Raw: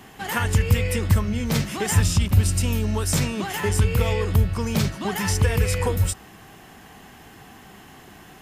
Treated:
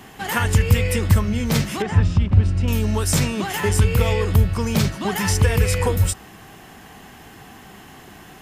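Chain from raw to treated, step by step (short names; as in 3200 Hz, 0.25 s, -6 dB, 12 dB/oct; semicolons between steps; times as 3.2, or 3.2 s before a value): 1.82–2.68 tape spacing loss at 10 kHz 31 dB; gain +3 dB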